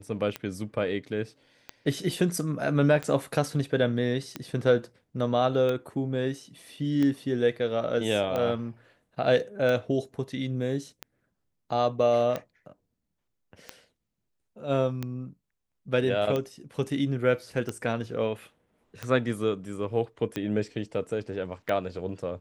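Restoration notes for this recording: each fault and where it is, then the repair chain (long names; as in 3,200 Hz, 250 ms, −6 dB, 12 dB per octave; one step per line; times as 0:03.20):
scratch tick 45 rpm −17 dBFS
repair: click removal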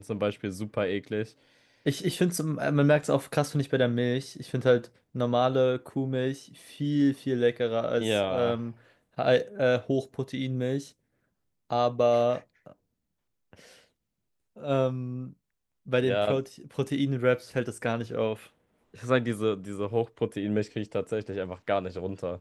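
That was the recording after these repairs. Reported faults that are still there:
none of them is left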